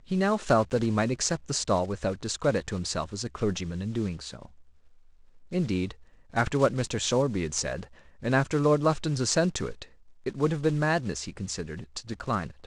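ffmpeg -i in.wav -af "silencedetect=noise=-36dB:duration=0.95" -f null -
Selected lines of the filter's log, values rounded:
silence_start: 4.45
silence_end: 5.52 | silence_duration: 1.07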